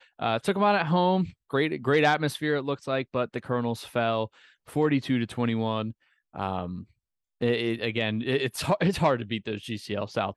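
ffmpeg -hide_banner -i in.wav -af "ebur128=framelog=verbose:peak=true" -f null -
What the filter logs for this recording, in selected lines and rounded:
Integrated loudness:
  I:         -27.1 LUFS
  Threshold: -37.4 LUFS
Loudness range:
  LRA:         4.5 LU
  Threshold: -48.0 LUFS
  LRA low:   -30.1 LUFS
  LRA high:  -25.6 LUFS
True peak:
  Peak:      -10.2 dBFS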